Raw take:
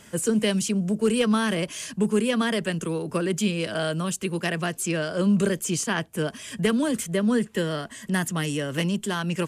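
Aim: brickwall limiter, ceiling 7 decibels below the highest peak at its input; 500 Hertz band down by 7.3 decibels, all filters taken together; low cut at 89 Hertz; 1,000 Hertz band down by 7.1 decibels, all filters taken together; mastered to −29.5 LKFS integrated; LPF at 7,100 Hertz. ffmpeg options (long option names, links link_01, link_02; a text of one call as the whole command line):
ffmpeg -i in.wav -af "highpass=89,lowpass=7100,equalizer=frequency=500:width_type=o:gain=-7.5,equalizer=frequency=1000:width_type=o:gain=-7.5,volume=0.5dB,alimiter=limit=-20dB:level=0:latency=1" out.wav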